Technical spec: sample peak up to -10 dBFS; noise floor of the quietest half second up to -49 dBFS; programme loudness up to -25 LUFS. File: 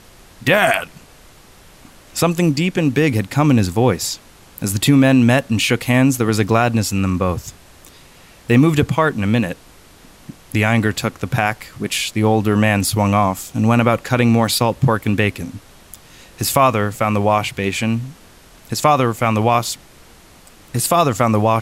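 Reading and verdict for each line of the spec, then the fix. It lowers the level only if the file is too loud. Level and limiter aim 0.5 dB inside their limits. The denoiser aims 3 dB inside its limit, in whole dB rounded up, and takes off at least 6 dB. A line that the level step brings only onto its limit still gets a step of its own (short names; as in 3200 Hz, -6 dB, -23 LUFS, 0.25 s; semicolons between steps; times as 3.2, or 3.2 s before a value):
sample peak -2.0 dBFS: fail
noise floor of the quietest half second -45 dBFS: fail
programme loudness -17.0 LUFS: fail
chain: gain -8.5 dB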